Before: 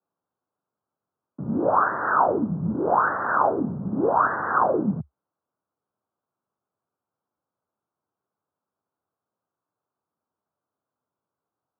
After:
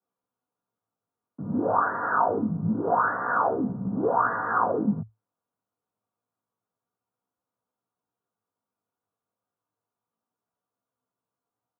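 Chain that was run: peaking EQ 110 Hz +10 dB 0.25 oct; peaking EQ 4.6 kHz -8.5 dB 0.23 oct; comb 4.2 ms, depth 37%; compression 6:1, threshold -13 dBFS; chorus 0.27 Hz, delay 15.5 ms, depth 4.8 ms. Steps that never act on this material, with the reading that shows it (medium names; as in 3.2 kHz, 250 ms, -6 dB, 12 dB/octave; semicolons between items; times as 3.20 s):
peaking EQ 4.6 kHz: input has nothing above 1.8 kHz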